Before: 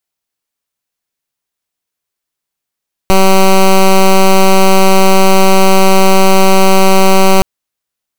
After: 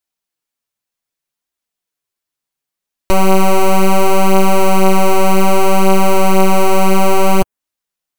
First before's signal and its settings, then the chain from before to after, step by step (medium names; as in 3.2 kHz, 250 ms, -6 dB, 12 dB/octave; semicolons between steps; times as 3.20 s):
pulse 191 Hz, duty 11% -5 dBFS 4.32 s
dynamic bell 4.4 kHz, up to -8 dB, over -32 dBFS, Q 1.1; flange 0.65 Hz, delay 2.9 ms, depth 7.2 ms, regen -13%